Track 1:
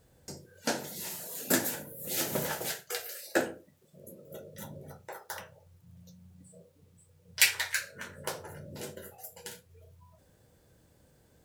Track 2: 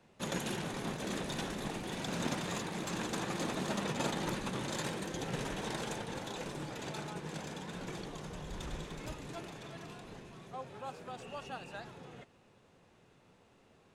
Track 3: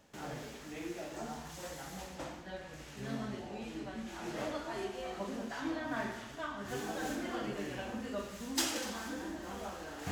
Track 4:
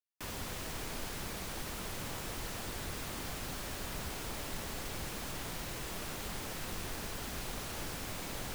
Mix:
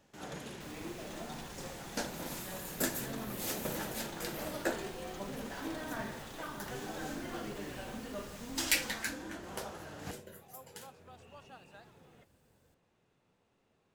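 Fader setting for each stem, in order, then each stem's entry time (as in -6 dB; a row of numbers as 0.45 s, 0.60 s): -6.5 dB, -10.0 dB, -3.5 dB, -11.5 dB; 1.30 s, 0.00 s, 0.00 s, 0.40 s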